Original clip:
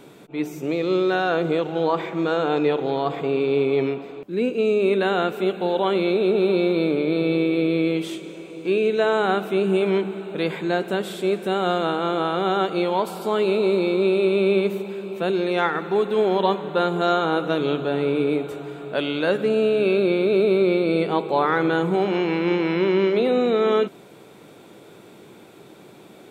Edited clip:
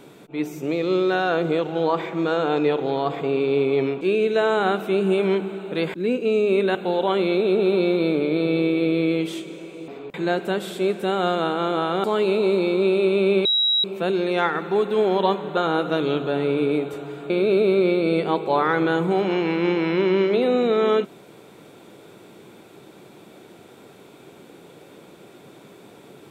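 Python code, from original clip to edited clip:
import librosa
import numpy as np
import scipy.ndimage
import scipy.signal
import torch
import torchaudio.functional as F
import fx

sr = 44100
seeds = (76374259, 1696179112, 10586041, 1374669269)

y = fx.edit(x, sr, fx.swap(start_s=4.01, length_s=0.26, other_s=8.64, other_length_s=1.93),
    fx.cut(start_s=5.08, length_s=0.43),
    fx.cut(start_s=12.47, length_s=0.77),
    fx.bleep(start_s=14.65, length_s=0.39, hz=3860.0, db=-16.5),
    fx.cut(start_s=16.77, length_s=0.38),
    fx.cut(start_s=18.88, length_s=1.25), tone=tone)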